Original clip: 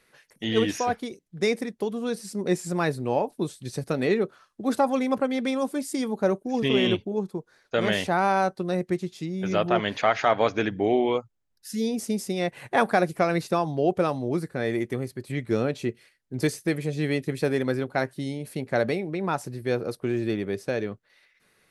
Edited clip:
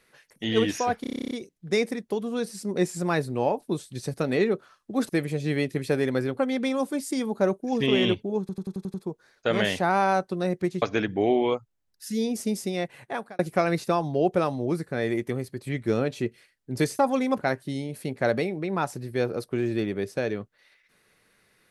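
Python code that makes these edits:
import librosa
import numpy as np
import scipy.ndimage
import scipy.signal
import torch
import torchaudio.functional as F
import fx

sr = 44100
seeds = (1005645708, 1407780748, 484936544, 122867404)

y = fx.edit(x, sr, fx.stutter(start_s=1.01, slice_s=0.03, count=11),
    fx.swap(start_s=4.79, length_s=0.42, other_s=16.62, other_length_s=1.3),
    fx.stutter(start_s=7.22, slice_s=0.09, count=7),
    fx.cut(start_s=9.1, length_s=1.35),
    fx.fade_out_span(start_s=12.26, length_s=0.76), tone=tone)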